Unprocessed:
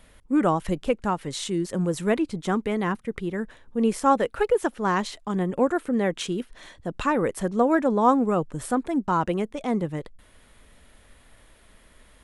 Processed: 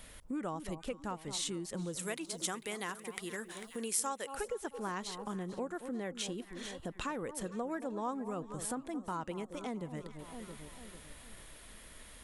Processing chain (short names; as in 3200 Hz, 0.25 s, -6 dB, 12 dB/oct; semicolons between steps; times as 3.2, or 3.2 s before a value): 1.99–4.35 RIAA curve recording; echo with dull and thin repeats by turns 0.223 s, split 1100 Hz, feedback 63%, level -13 dB; compressor 3:1, threshold -41 dBFS, peak gain reduction 19.5 dB; high shelf 3100 Hz +8.5 dB; gain -1 dB